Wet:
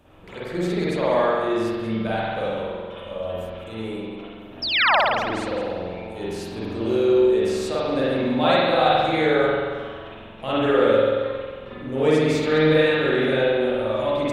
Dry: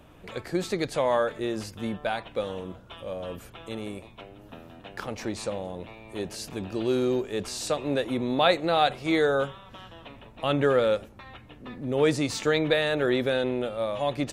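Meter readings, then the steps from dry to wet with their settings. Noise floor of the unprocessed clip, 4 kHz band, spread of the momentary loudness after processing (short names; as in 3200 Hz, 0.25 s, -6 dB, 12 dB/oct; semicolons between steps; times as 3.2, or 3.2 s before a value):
-50 dBFS, +5.5 dB, 15 LU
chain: reverse delay 0.104 s, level -13 dB; painted sound fall, 4.62–4.96, 530–5600 Hz -21 dBFS; spring tank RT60 1.7 s, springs 45 ms, chirp 25 ms, DRR -9 dB; gain -4.5 dB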